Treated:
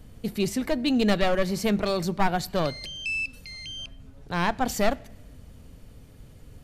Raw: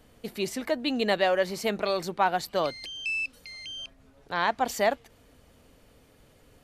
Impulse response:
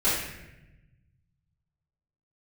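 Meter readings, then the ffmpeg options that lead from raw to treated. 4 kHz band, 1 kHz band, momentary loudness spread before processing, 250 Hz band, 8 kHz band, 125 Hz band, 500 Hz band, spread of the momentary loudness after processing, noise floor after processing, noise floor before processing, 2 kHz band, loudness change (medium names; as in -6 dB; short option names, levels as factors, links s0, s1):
+1.0 dB, -1.0 dB, 13 LU, +7.5 dB, +3.0 dB, +11.0 dB, 0.0 dB, 13 LU, -49 dBFS, -59 dBFS, 0.0 dB, +1.5 dB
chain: -filter_complex "[0:a]aeval=exprs='clip(val(0),-1,0.0668)':c=same,bass=f=250:g=14,treble=f=4000:g=3,asplit=2[s0][s1];[1:a]atrim=start_sample=2205[s2];[s1][s2]afir=irnorm=-1:irlink=0,volume=0.0211[s3];[s0][s3]amix=inputs=2:normalize=0"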